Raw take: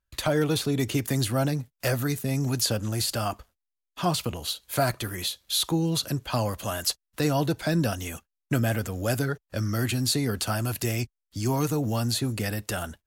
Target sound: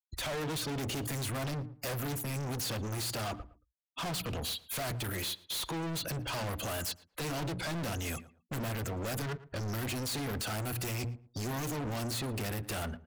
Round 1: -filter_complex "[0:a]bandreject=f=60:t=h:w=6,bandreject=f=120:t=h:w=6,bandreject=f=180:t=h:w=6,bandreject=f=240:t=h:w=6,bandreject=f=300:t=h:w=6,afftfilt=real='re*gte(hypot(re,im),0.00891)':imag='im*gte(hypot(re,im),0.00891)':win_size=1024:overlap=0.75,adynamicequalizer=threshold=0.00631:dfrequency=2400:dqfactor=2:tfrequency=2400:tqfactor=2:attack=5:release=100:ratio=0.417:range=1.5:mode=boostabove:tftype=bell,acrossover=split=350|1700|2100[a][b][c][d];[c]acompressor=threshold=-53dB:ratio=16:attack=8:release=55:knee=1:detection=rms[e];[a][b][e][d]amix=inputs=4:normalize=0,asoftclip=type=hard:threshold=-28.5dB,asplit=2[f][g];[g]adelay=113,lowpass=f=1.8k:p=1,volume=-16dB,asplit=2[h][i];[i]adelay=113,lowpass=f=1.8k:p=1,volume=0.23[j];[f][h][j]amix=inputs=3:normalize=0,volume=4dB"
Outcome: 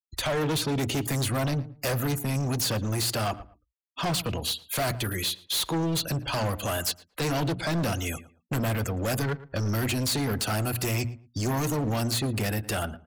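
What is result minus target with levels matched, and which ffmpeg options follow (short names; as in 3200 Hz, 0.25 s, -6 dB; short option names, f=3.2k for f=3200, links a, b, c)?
hard clip: distortion -4 dB
-filter_complex "[0:a]bandreject=f=60:t=h:w=6,bandreject=f=120:t=h:w=6,bandreject=f=180:t=h:w=6,bandreject=f=240:t=h:w=6,bandreject=f=300:t=h:w=6,afftfilt=real='re*gte(hypot(re,im),0.00891)':imag='im*gte(hypot(re,im),0.00891)':win_size=1024:overlap=0.75,adynamicequalizer=threshold=0.00631:dfrequency=2400:dqfactor=2:tfrequency=2400:tqfactor=2:attack=5:release=100:ratio=0.417:range=1.5:mode=boostabove:tftype=bell,acrossover=split=350|1700|2100[a][b][c][d];[c]acompressor=threshold=-53dB:ratio=16:attack=8:release=55:knee=1:detection=rms[e];[a][b][e][d]amix=inputs=4:normalize=0,asoftclip=type=hard:threshold=-38.5dB,asplit=2[f][g];[g]adelay=113,lowpass=f=1.8k:p=1,volume=-16dB,asplit=2[h][i];[i]adelay=113,lowpass=f=1.8k:p=1,volume=0.23[j];[f][h][j]amix=inputs=3:normalize=0,volume=4dB"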